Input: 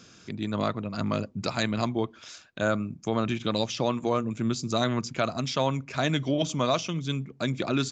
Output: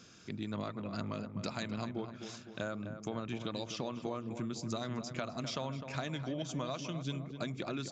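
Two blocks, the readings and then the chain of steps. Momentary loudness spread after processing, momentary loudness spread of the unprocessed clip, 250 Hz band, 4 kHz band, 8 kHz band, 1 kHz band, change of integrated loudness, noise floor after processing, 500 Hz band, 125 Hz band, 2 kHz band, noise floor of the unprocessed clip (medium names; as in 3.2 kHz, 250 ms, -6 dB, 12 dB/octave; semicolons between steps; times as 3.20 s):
3 LU, 5 LU, -10.5 dB, -11.0 dB, no reading, -12.0 dB, -11.0 dB, -51 dBFS, -12.0 dB, -10.0 dB, -11.0 dB, -54 dBFS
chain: compression, threshold -30 dBFS, peak gain reduction 10 dB; on a send: filtered feedback delay 255 ms, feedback 58%, low-pass 1.8 kHz, level -8.5 dB; on the sum: trim -5 dB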